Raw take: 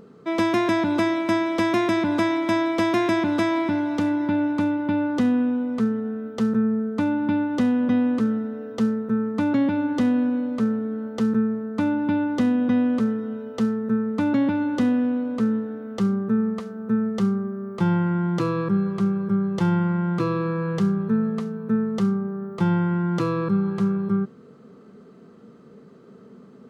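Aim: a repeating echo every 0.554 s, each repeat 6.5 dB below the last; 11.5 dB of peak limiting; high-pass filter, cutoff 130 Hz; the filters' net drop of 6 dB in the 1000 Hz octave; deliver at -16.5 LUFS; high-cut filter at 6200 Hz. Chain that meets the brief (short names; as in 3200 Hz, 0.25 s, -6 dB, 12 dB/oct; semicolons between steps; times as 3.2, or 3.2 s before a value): HPF 130 Hz; LPF 6200 Hz; bell 1000 Hz -7.5 dB; limiter -23 dBFS; feedback echo 0.554 s, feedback 47%, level -6.5 dB; gain +12 dB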